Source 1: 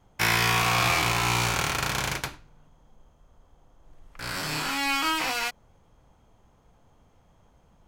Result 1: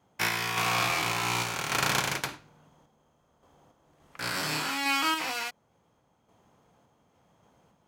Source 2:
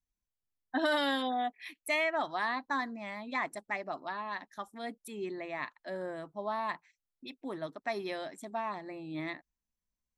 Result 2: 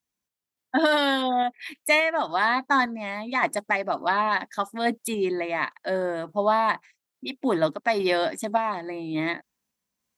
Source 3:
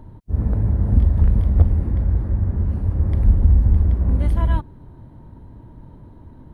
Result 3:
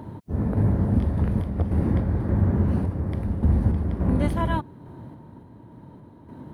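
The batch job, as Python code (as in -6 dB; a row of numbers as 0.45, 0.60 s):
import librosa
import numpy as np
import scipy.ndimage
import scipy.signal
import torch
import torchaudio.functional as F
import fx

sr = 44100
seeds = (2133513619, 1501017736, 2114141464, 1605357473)

y = scipy.signal.sosfilt(scipy.signal.butter(2, 140.0, 'highpass', fs=sr, output='sos'), x)
y = fx.rider(y, sr, range_db=4, speed_s=0.5)
y = fx.tremolo_random(y, sr, seeds[0], hz=3.5, depth_pct=55)
y = y * 10.0 ** (-9 / 20.0) / np.max(np.abs(y))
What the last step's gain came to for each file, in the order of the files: 0.0, +13.5, +7.0 dB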